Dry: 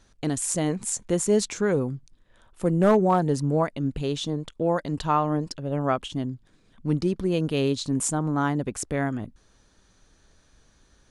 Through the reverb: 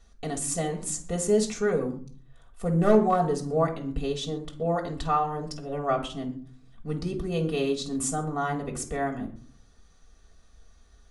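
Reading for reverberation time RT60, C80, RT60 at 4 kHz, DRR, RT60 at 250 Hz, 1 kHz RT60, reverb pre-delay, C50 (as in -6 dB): 0.50 s, 15.5 dB, 0.35 s, 0.5 dB, 0.70 s, 0.50 s, 3 ms, 11.5 dB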